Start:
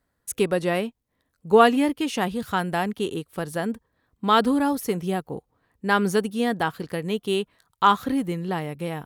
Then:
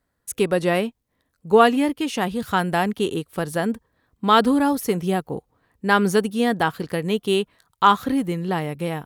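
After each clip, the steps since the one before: level rider gain up to 4 dB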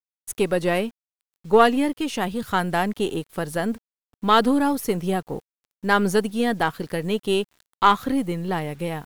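partial rectifier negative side -3 dB; bit crusher 9-bit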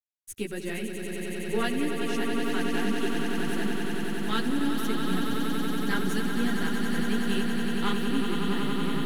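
high-order bell 770 Hz -11 dB; chorus voices 2, 1.5 Hz, delay 11 ms, depth 3 ms; echo with a slow build-up 93 ms, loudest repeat 8, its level -7.5 dB; trim -5.5 dB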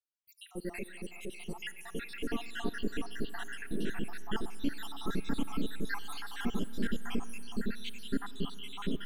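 random holes in the spectrogram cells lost 73%; reverberation RT60 3.6 s, pre-delay 5 ms, DRR 16.5 dB; trim -3.5 dB

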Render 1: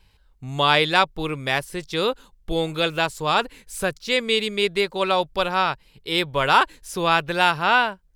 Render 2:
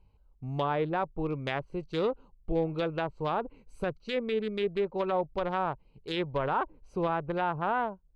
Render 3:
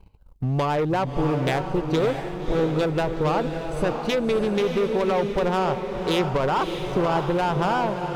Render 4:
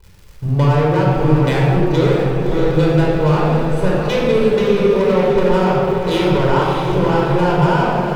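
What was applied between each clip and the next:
local Wiener filter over 25 samples; low-pass that closes with the level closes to 1 kHz, closed at -17.5 dBFS; peak limiter -16 dBFS, peak gain reduction 7 dB; trim -3.5 dB
waveshaping leveller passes 2; compression 4:1, threshold -30 dBFS, peak gain reduction 7 dB; echo that smears into a reverb 616 ms, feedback 48%, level -6 dB; trim +8.5 dB
crackle 150 per s -37 dBFS; simulated room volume 2800 m³, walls mixed, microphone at 4.8 m; trim -1 dB

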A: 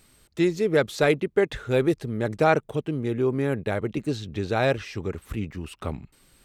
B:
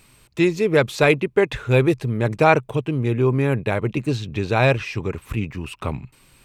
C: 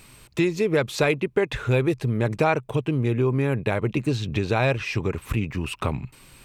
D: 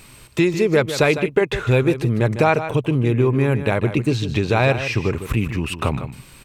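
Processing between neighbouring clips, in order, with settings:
graphic EQ with 31 bands 125 Hz +8 dB, 1 kHz +7 dB, 2.5 kHz +8 dB; trim +3.5 dB
compression 2.5:1, threshold -26 dBFS, peak gain reduction 11.5 dB; trim +4 dB
delay 153 ms -11 dB; trim +4.5 dB

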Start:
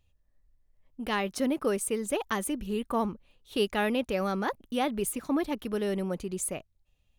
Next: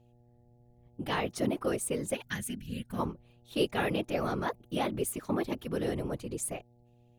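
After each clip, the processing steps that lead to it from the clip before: whisper effect; mains buzz 120 Hz, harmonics 7, -60 dBFS -6 dB/octave; time-frequency box 2.14–2.99 s, 270–1400 Hz -14 dB; trim -2.5 dB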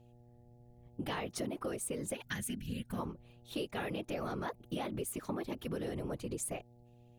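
in parallel at -2.5 dB: peak limiter -27.5 dBFS, peak gain reduction 11 dB; on the sum: compression, threshold -32 dBFS, peak gain reduction 11 dB; trim -3 dB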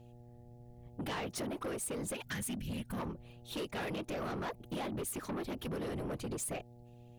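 saturation -39.5 dBFS, distortion -10 dB; trim +5 dB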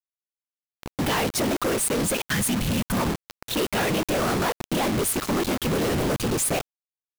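in parallel at +0.5 dB: peak limiter -43.5 dBFS, peak gain reduction 9 dB; on the sum: companded quantiser 2-bit; trim +3 dB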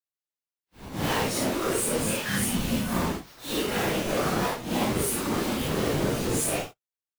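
phase randomisation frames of 200 ms; trim -2.5 dB

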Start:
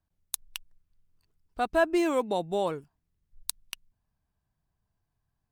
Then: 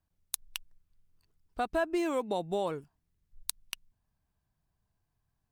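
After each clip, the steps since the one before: compression 2.5:1, threshold -29 dBFS, peak gain reduction 7.5 dB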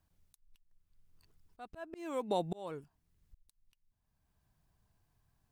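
slow attack 741 ms; trim +5 dB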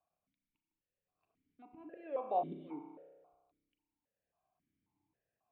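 distance through air 420 m; spring tank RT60 1.4 s, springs 31 ms, chirp 60 ms, DRR 4.5 dB; stepped vowel filter 3.7 Hz; trim +8 dB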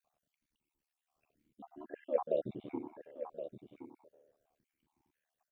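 random holes in the spectrogram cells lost 49%; ring modulator 37 Hz; delay 1070 ms -10.5 dB; trim +9.5 dB

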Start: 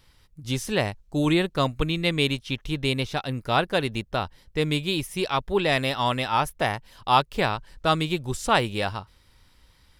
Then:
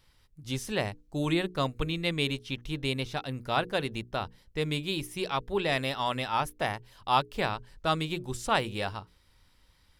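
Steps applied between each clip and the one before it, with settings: hum notches 60/120/180/240/300/360/420/480 Hz; trim -5.5 dB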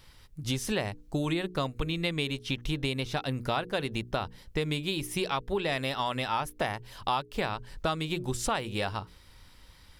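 compression 6:1, threshold -36 dBFS, peak gain reduction 16 dB; trim +9 dB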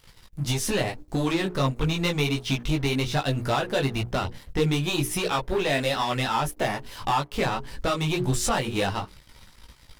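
waveshaping leveller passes 3; chorus voices 4, 0.83 Hz, delay 18 ms, depth 4.4 ms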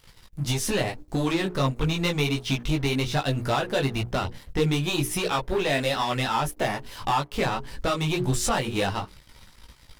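no audible change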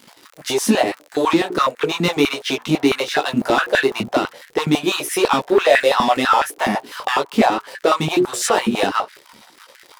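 crackle 51 per s -35 dBFS; step-sequenced high-pass 12 Hz 230–1700 Hz; trim +5.5 dB

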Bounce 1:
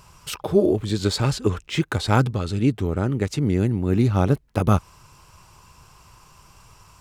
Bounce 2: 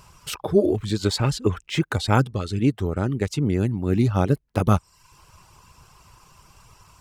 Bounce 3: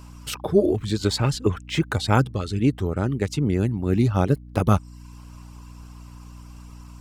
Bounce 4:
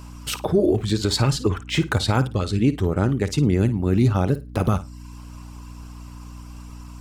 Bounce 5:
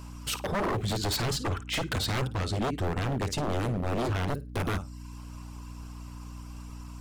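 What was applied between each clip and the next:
reverb removal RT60 0.54 s
hum 60 Hz, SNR 18 dB
peak limiter -13 dBFS, peak gain reduction 8.5 dB; flutter echo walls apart 9.2 m, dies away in 0.23 s; trim +3.5 dB
wavefolder -20 dBFS; trim -3.5 dB

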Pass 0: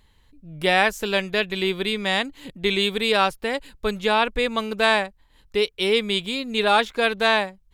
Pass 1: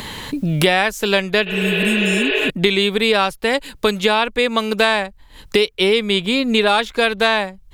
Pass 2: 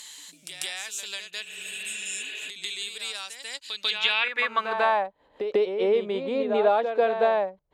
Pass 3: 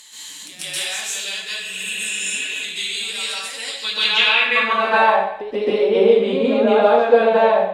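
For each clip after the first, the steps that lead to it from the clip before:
spectral replace 1.49–2.47 s, 310–5100 Hz before; three bands compressed up and down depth 100%; trim +4 dB
band-pass sweep 7.3 kHz -> 590 Hz, 3.45–5.19 s; reverse echo 144 ms -7.5 dB
plate-style reverb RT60 0.71 s, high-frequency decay 0.95×, pre-delay 115 ms, DRR -9.5 dB; trim -1 dB

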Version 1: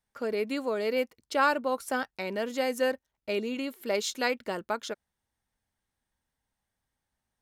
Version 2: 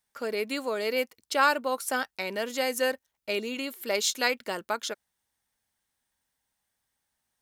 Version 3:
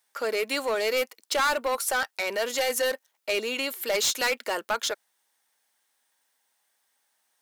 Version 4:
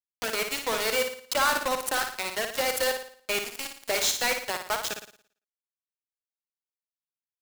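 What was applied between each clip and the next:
tilt EQ +2 dB/octave; trim +1.5 dB
high-pass 440 Hz 12 dB/octave; saturation -28.5 dBFS, distortion -6 dB; trim +8 dB
bit crusher 4-bit; on a send: flutter echo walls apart 9.7 m, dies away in 0.51 s; on the sum: trim -4 dB

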